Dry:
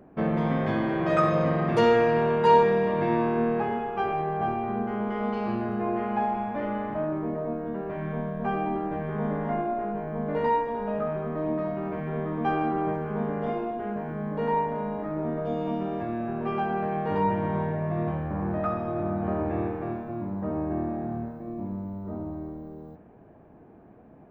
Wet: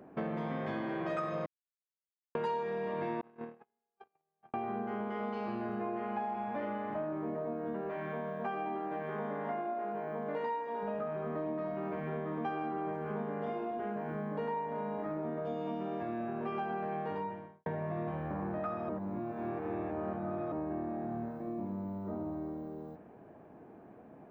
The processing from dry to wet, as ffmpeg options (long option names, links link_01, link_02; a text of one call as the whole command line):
ffmpeg -i in.wav -filter_complex "[0:a]asettb=1/sr,asplit=3[link_01][link_02][link_03];[link_01]atrim=end=3.214[link_04];[link_02]atrim=start=3.21:end=4.54,asetpts=PTS-STARTPTS,afade=type=in:duration=0.004:curve=qsin,afade=type=out:start_time=1.326:duration=0.004:curve=qsin,agate=range=-58dB:threshold=-22dB:ratio=16:release=100:detection=peak[link_05];[link_03]atrim=start=4.536[link_06];[link_04][link_05]acrossfade=duration=0.004:curve1=hsin:curve2=qsin[link_07];[link_07][link_06]acrossfade=duration=0.004:curve1=qsin:curve2=hsin,asettb=1/sr,asplit=3[link_08][link_09][link_10];[link_08]atrim=end=7.894[link_11];[link_09]atrim=start=7.89:end=10.83,asetpts=PTS-STARTPTS,afade=type=in:duration=0.004:curve=qsin,afade=type=out:start_time=2.936:duration=0.004:curve=qsin,highpass=frequency=330:poles=1[link_12];[link_10]atrim=start=10.826[link_13];[link_11][link_12]acrossfade=duration=0.004:curve1=hsin:curve2=qsin[link_14];[link_14][link_13]acrossfade=duration=0.004:curve1=qsin:curve2=hsin,asplit=6[link_15][link_16][link_17][link_18][link_19][link_20];[link_15]atrim=end=1.46,asetpts=PTS-STARTPTS,afade=type=out:start_time=1.456:duration=0.004:curve=hsin[link_21];[link_16]atrim=start=1.46:end=2.35,asetpts=PTS-STARTPTS,volume=0[link_22];[link_17]atrim=start=2.35:end=17.66,asetpts=PTS-STARTPTS,afade=type=in:duration=0.004:curve=hsin,afade=type=out:start_time=14.66:duration=0.65:curve=qua[link_23];[link_18]atrim=start=17.66:end=18.892,asetpts=PTS-STARTPTS,afade=type=in:duration=0.004:curve=hsin[link_24];[link_19]atrim=start=18.888:end=20.522,asetpts=PTS-STARTPTS,areverse[link_25];[link_20]atrim=start=20.518[link_26];[link_21][link_22][link_23][link_24]concat=n=4:v=0:a=1[link_27];[link_27][link_25]acrossfade=duration=0.004:curve1=hsin:curve2=hsin[link_28];[link_28][link_26]acrossfade=duration=0.004:curve1=hsin:curve2=hsin,highpass=frequency=210:poles=1,acompressor=threshold=-34dB:ratio=5" out.wav